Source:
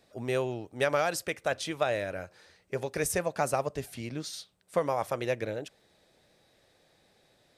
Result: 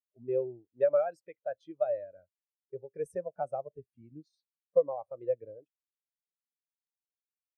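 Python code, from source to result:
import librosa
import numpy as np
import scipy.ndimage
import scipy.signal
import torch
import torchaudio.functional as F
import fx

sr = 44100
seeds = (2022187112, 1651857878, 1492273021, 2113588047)

y = fx.spectral_expand(x, sr, expansion=2.5)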